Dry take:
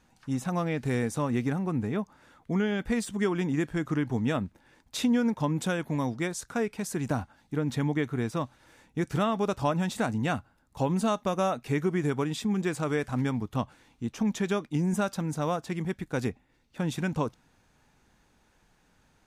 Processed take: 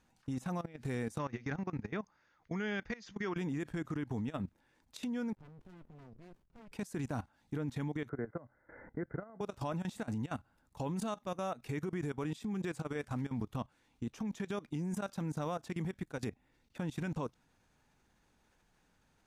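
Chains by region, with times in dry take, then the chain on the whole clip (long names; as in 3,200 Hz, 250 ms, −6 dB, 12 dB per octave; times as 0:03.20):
0:01.18–0:03.37: Chebyshev low-pass with heavy ripple 6,700 Hz, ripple 6 dB + high-shelf EQ 2,200 Hz +3.5 dB + notch filter 250 Hz, Q 6.4
0:05.35–0:06.72: high-shelf EQ 3,600 Hz −11 dB + output level in coarse steps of 19 dB + windowed peak hold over 65 samples
0:08.09–0:09.41: Chebyshev low-pass with heavy ripple 2,100 Hz, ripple 9 dB + multiband upward and downward compressor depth 100%
whole clip: brickwall limiter −27 dBFS; output level in coarse steps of 18 dB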